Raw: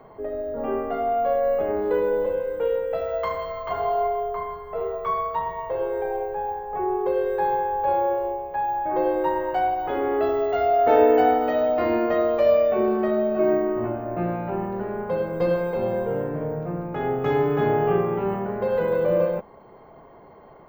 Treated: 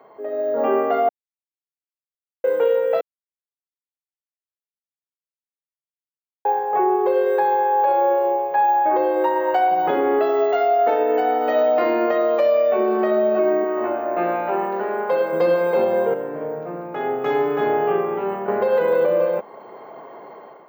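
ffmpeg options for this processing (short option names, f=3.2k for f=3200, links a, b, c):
-filter_complex "[0:a]asettb=1/sr,asplit=3[a][b][c];[a]atrim=end=7.634[d];[b]atrim=start=7.63:end=8.36,asetpts=PTS-STARTPTS,afade=t=in:d=0.004:c=qsin,afade=t=out:st=0.726:d=0.004:c=qsin,highpass=130[e];[c]atrim=start=8.356[f];[d][e]acrossfade=d=0.004:c1=hsin:c2=qsin[g];[g][f]acrossfade=d=0.004:c1=qsin:c2=hsin,asettb=1/sr,asplit=3[h][i][j];[h]atrim=end=9.714[k];[i]atrim=start=9.71:end=10.19,asetpts=PTS-STARTPTS,afade=t=in:d=0.004:c=qsin,afade=t=out:st=0.476:d=0.004:c=qsin,equalizer=f=170:w=1.5:g=15[l];[j]atrim=start=10.186[m];[k][l]acrossfade=d=0.004:c1=hsin:c2=qsin[n];[n][m]acrossfade=d=0.004:c1=qsin:c2=hsin,asettb=1/sr,asplit=3[o][p][q];[o]atrim=end=13.644[r];[p]atrim=start=13.64:end=15.33,asetpts=PTS-STARTPTS,afade=t=in:d=0.004:c=qsin,afade=t=out:st=1.686:d=0.004:c=qsin,highpass=f=460:p=1[s];[q]atrim=start=15.326[t];[r][s]acrossfade=d=0.004:c1=hsin:c2=qsin[u];[u][t]acrossfade=d=0.004:c1=qsin:c2=hsin,asplit=7[v][w][x][y][z][aa][ab];[v]atrim=end=1.09,asetpts=PTS-STARTPTS,afade=t=out:st=1.086:d=0.004:c=hsin[ac];[w]atrim=start=1.09:end=2.44,asetpts=PTS-STARTPTS,volume=0[ad];[x]atrim=start=2.44:end=3.01,asetpts=PTS-STARTPTS,afade=t=in:d=0.004:c=hsin,afade=t=out:st=0.566:d=0.004:c=hsin[ae];[y]atrim=start=3.01:end=6.45,asetpts=PTS-STARTPTS,volume=0[af];[z]atrim=start=6.45:end=16.142,asetpts=PTS-STARTPTS,afade=t=in:d=0.004:c=hsin[ag];[aa]atrim=start=16.138:end=18.482,asetpts=PTS-STARTPTS,volume=-7dB[ah];[ab]atrim=start=18.478[ai];[ac][ad][ae][af][ag]concat=n=5:v=0:a=1[aj];[aj][ah]acrossfade=d=0.004:c1=hsin:c2=hsin[ak];[ak][ai]acrossfade=d=0.004:c1=hsin:c2=hsin,highpass=330,dynaudnorm=f=110:g=7:m=10dB,alimiter=limit=-10dB:level=0:latency=1:release=328"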